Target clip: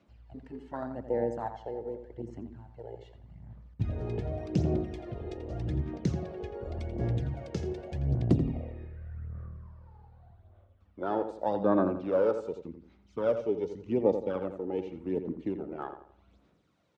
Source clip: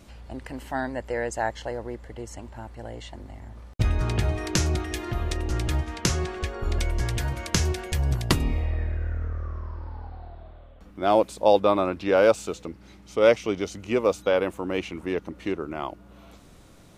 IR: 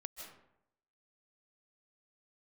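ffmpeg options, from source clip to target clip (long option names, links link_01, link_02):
-filter_complex "[0:a]acrossover=split=310|3000[link_01][link_02][link_03];[link_02]acompressor=threshold=-34dB:ratio=2[link_04];[link_01][link_04][link_03]amix=inputs=3:normalize=0,afwtdn=0.0355,highpass=140,lowpass=4500,aphaser=in_gain=1:out_gain=1:delay=2.4:decay=0.54:speed=0.85:type=sinusoidal,asplit=2[link_05][link_06];[link_06]adelay=85,lowpass=frequency=2800:poles=1,volume=-8.5dB,asplit=2[link_07][link_08];[link_08]adelay=85,lowpass=frequency=2800:poles=1,volume=0.38,asplit=2[link_09][link_10];[link_10]adelay=85,lowpass=frequency=2800:poles=1,volume=0.38,asplit=2[link_11][link_12];[link_12]adelay=85,lowpass=frequency=2800:poles=1,volume=0.38[link_13];[link_05][link_07][link_09][link_11][link_13]amix=inputs=5:normalize=0,volume=-3dB"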